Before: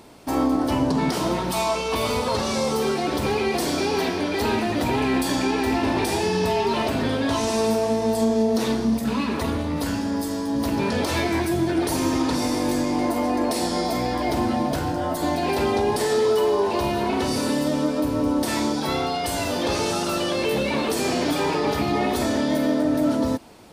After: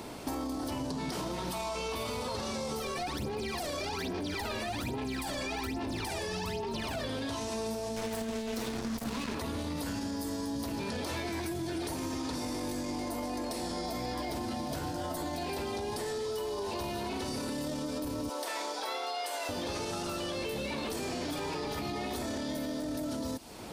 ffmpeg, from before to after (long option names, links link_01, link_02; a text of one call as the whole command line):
ffmpeg -i in.wav -filter_complex "[0:a]asplit=3[link_01][link_02][link_03];[link_01]afade=type=out:start_time=2.78:duration=0.02[link_04];[link_02]aphaser=in_gain=1:out_gain=1:delay=1.8:decay=0.76:speed=1.2:type=sinusoidal,afade=type=in:start_time=2.78:duration=0.02,afade=type=out:start_time=7.07:duration=0.02[link_05];[link_03]afade=type=in:start_time=7.07:duration=0.02[link_06];[link_04][link_05][link_06]amix=inputs=3:normalize=0,asettb=1/sr,asplit=3[link_07][link_08][link_09];[link_07]atrim=end=7.964[link_10];[link_08]atrim=start=7.96:end=9.35,asetpts=PTS-STARTPTS,afade=type=in:duration=0.004:curve=qsin,afade=type=out:start_time=1.386:duration=0.004:curve=qsin,acrusher=bits=3:mix=0:aa=0.5[link_11];[link_09]atrim=start=9.346[link_12];[link_10][link_11]acrossfade=duration=0.004:curve1=hsin:curve2=qsin[link_13];[link_13][link_12]acrossfade=duration=0.004:curve1=qsin:curve2=hsin,asettb=1/sr,asplit=3[link_14][link_15][link_16];[link_14]atrim=end=18.294[link_17];[link_15]atrim=start=18.29:end=19.49,asetpts=PTS-STARTPTS,afade=type=in:duration=0.004:curve=qsin,afade=type=out:start_time=1.196:duration=0.004:curve=qsin,highpass=frequency=470:width=0.5412,highpass=frequency=470:width=1.3066[link_18];[link_16]atrim=start=19.486[link_19];[link_17][link_18]acrossfade=duration=0.004:curve1=hsin:curve2=qsin[link_20];[link_20][link_19]acrossfade=duration=0.004:curve1=qsin:curve2=hsin,alimiter=limit=-20dB:level=0:latency=1:release=29,acrossover=split=86|3600[link_21][link_22][link_23];[link_21]acompressor=threshold=-53dB:ratio=4[link_24];[link_22]acompressor=threshold=-41dB:ratio=4[link_25];[link_23]acompressor=threshold=-50dB:ratio=4[link_26];[link_24][link_25][link_26]amix=inputs=3:normalize=0,volume=4.5dB" out.wav